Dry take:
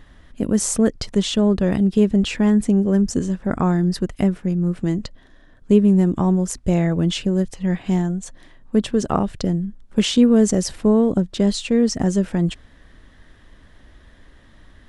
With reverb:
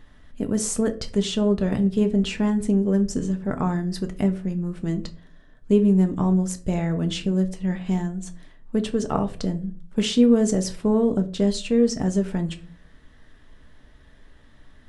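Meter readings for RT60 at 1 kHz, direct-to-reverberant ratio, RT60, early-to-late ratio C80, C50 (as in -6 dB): 0.35 s, 6.0 dB, 0.40 s, 21.0 dB, 16.5 dB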